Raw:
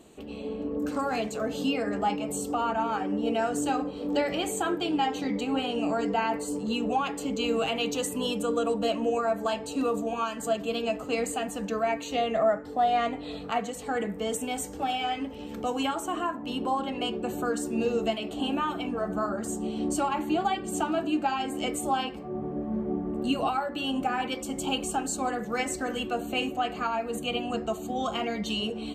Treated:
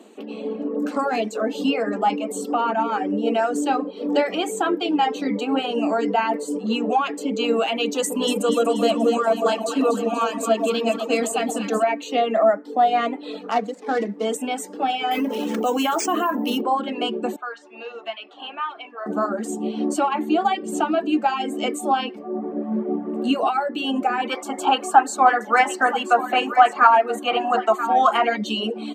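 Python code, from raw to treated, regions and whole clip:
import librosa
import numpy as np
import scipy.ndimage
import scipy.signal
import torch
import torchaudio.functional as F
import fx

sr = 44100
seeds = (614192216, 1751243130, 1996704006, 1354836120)

y = fx.chain(x, sr, fx.bass_treble(bass_db=1, treble_db=6),
    fx.echo_alternate(ms=120, hz=1000.0, feedback_pct=77, wet_db=-5.5), at=(7.98, 11.84))
y = fx.chain(y, sr, fx.median_filter(points=15),
    fx.lowpass(hz=7000.0, slope=12),
    fx.high_shelf(hz=5100.0, db=9.0), at=(13.51, 14.25))
y = fx.chain(y, sr, fx.peak_eq(hz=10000.0, db=11.0, octaves=0.99),
    fx.resample_bad(factor=3, down='none', up='hold'),
    fx.env_flatten(amount_pct=70), at=(15.11, 16.61))
y = fx.chain(y, sr, fx.highpass(hz=1100.0, slope=12),
    fx.air_absorb(metres=240.0), at=(17.36, 19.06))
y = fx.chain(y, sr, fx.highpass(hz=290.0, slope=12),
    fx.band_shelf(hz=1200.0, db=10.5, octaves=1.7),
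    fx.echo_single(ms=979, db=-12.0), at=(24.29, 28.37))
y = fx.dereverb_blind(y, sr, rt60_s=0.67)
y = scipy.signal.sosfilt(scipy.signal.ellip(4, 1.0, 40, 210.0, 'highpass', fs=sr, output='sos'), y)
y = fx.high_shelf(y, sr, hz=5300.0, db=-8.0)
y = F.gain(torch.from_numpy(y), 8.0).numpy()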